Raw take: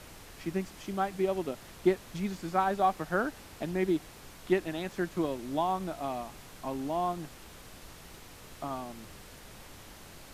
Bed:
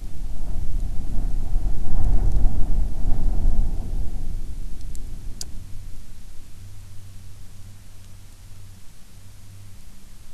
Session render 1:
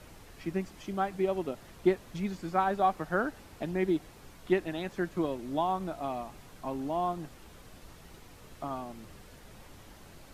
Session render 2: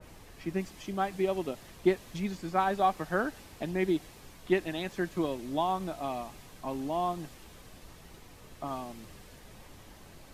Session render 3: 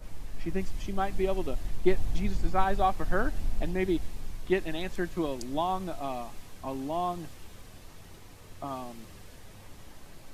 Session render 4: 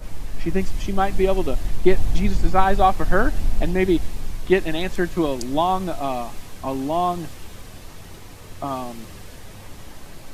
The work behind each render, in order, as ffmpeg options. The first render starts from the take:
-af "afftdn=nr=6:nf=-51"
-af "bandreject=f=1.4k:w=17,adynamicequalizer=threshold=0.00631:dfrequency=2000:dqfactor=0.7:tfrequency=2000:tqfactor=0.7:attack=5:release=100:ratio=0.375:range=2.5:mode=boostabove:tftype=highshelf"
-filter_complex "[1:a]volume=-11.5dB[a];[0:a][a]amix=inputs=2:normalize=0"
-af "volume=9.5dB,alimiter=limit=-2dB:level=0:latency=1"

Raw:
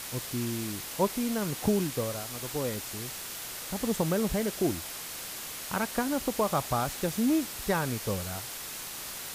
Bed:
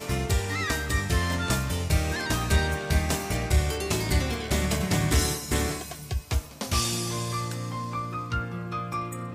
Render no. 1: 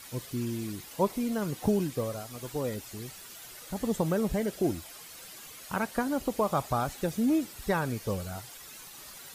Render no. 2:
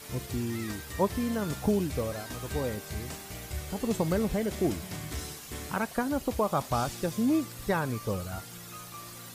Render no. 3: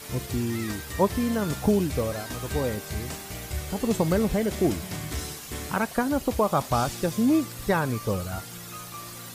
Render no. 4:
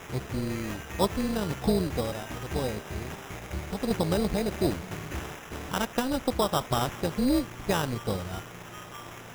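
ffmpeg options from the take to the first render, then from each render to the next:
-af "afftdn=nr=11:nf=-40"
-filter_complex "[1:a]volume=-14.5dB[a];[0:a][a]amix=inputs=2:normalize=0"
-af "volume=4.5dB"
-af "tremolo=f=260:d=0.71,acrusher=samples=10:mix=1:aa=0.000001"

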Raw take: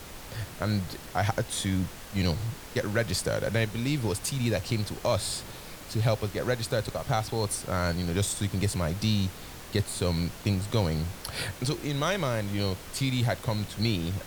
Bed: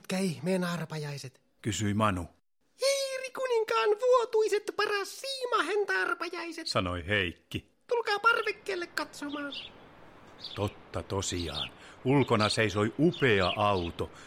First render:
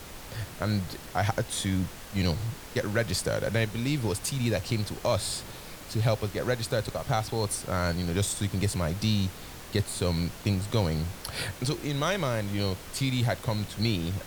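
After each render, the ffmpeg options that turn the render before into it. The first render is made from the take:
-af anull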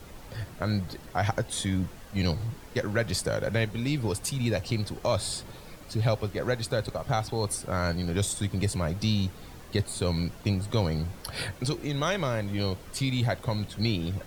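-af "afftdn=nr=8:nf=-44"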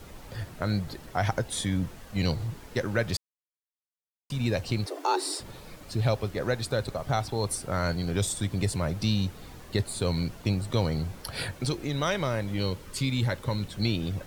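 -filter_complex "[0:a]asettb=1/sr,asplit=3[a][b][c];[a]atrim=end=4.864[d];[b]atrim=start=4.86:end=5.4,asetpts=PTS-STARTPTS,afade=t=in:d=0.004:c=qsin,afade=t=out:st=0.536:d=0.004:c=qsin,afreqshift=270[e];[c]atrim=start=5.396[f];[d][e]acrossfade=d=0.004:c1=hsin:c2=qsin[g];[g][f]acrossfade=d=0.004:c1=qsin:c2=hsin,asettb=1/sr,asplit=3[h][i][j];[h]atrim=end=12.594[k];[i]atrim=start=12.59:end=13.68,asetpts=PTS-STARTPTS,afade=t=in:d=0.004:c=qsin,afade=t=out:st=1.086:d=0.004:c=qsin,asuperstop=centerf=700:order=4:qfactor=4.5[l];[j]atrim=start=13.676[m];[k][l]acrossfade=d=0.004:c1=hsin:c2=qsin[n];[n][m]acrossfade=d=0.004:c1=qsin:c2=hsin,asplit=3[o][p][q];[o]atrim=end=3.17,asetpts=PTS-STARTPTS,afade=t=out:st=3.166:d=0.004:c=hsin[r];[p]atrim=start=3.17:end=4.3,asetpts=PTS-STARTPTS,volume=0[s];[q]atrim=start=4.3,asetpts=PTS-STARTPTS,afade=t=in:d=0.004:c=hsin[t];[r][s][t]concat=n=3:v=0:a=1"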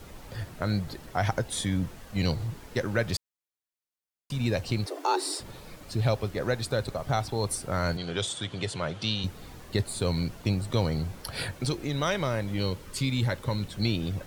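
-filter_complex "[0:a]asettb=1/sr,asplit=3[a][b][c];[a]atrim=end=7.974[d];[b]atrim=start=7.97:end=9.24,asetpts=PTS-STARTPTS,afade=t=in:d=0.004:c=qsin,afade=t=out:st=1.266:d=0.004:c=qsin,highpass=150,equalizer=f=200:t=q:w=4:g=-7,equalizer=f=290:t=q:w=4:g=-5,equalizer=f=1.4k:t=q:w=4:g=4,equalizer=f=3.2k:t=q:w=4:g=10,equalizer=f=5.4k:t=q:w=4:g=-4,equalizer=f=7.9k:t=q:w=4:g=-4,lowpass=f=8.5k:w=0.5412,lowpass=f=8.5k:w=1.3066[e];[c]atrim=start=9.236[f];[d][e]acrossfade=d=0.004:c1=hsin:c2=qsin[g];[g][f]acrossfade=d=0.004:c1=qsin:c2=hsin"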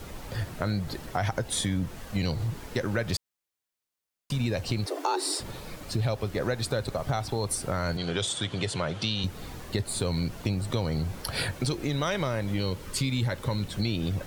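-filter_complex "[0:a]asplit=2[a][b];[b]alimiter=limit=-20dB:level=0:latency=1,volume=-2.5dB[c];[a][c]amix=inputs=2:normalize=0,acompressor=threshold=-26dB:ratio=2.5"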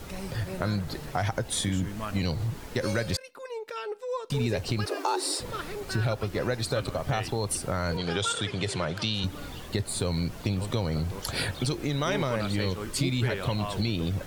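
-filter_complex "[1:a]volume=-9dB[a];[0:a][a]amix=inputs=2:normalize=0"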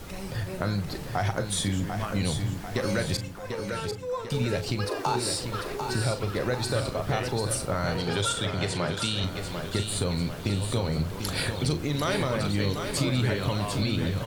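-filter_complex "[0:a]asplit=2[a][b];[b]adelay=40,volume=-11dB[c];[a][c]amix=inputs=2:normalize=0,asplit=2[d][e];[e]aecho=0:1:744|1488|2232|2976|3720|4464:0.447|0.228|0.116|0.0593|0.0302|0.0154[f];[d][f]amix=inputs=2:normalize=0"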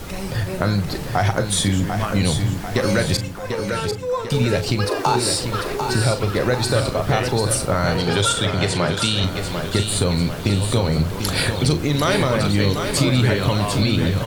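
-af "volume=8.5dB"

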